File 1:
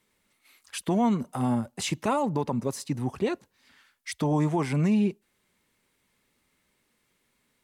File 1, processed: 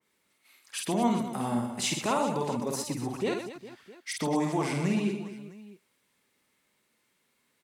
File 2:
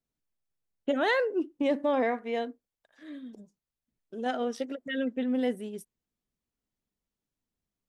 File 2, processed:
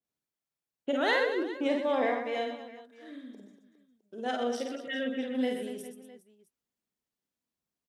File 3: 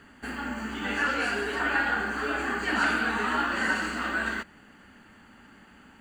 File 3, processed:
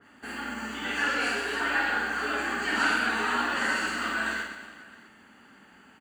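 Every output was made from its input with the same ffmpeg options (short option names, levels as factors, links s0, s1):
-filter_complex "[0:a]highpass=f=210:p=1,asplit=2[s0][s1];[s1]aecho=0:1:50|125|237.5|406.2|659.4:0.631|0.398|0.251|0.158|0.1[s2];[s0][s2]amix=inputs=2:normalize=0,adynamicequalizer=threshold=0.01:dfrequency=2300:dqfactor=0.7:tfrequency=2300:tqfactor=0.7:attack=5:release=100:ratio=0.375:range=2:mode=boostabove:tftype=highshelf,volume=0.75"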